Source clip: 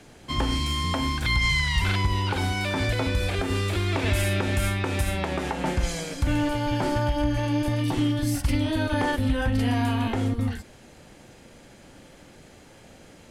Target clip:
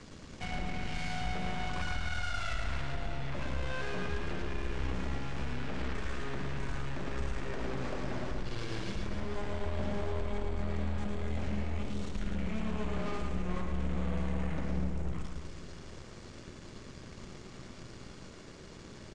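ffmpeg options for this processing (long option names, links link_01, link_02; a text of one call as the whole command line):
ffmpeg -i in.wav -filter_complex "[0:a]acrossover=split=5100[link_01][link_02];[link_02]acompressor=threshold=-51dB:ratio=4:attack=1:release=60[link_03];[link_01][link_03]amix=inputs=2:normalize=0,asetrate=30649,aresample=44100,equalizer=frequency=1200:width=0.33:gain=-4,bandreject=frequency=50:width_type=h:width=6,bandreject=frequency=100:width_type=h:width=6,bandreject=frequency=150:width_type=h:width=6,bandreject=frequency=200:width_type=h:width=6,acompressor=threshold=-37dB:ratio=3,asoftclip=type=tanh:threshold=-33dB,aeval=exprs='0.0224*(cos(1*acos(clip(val(0)/0.0224,-1,1)))-cos(1*PI/2))+0.00708*(cos(4*acos(clip(val(0)/0.0224,-1,1)))-cos(4*PI/2))':channel_layout=same,lowpass=frequency=9800:width=0.5412,lowpass=frequency=9800:width=1.3066,asplit=2[link_04][link_05];[link_05]aecho=0:1:110|247.5|419.4|634.2|902.8:0.631|0.398|0.251|0.158|0.1[link_06];[link_04][link_06]amix=inputs=2:normalize=0" out.wav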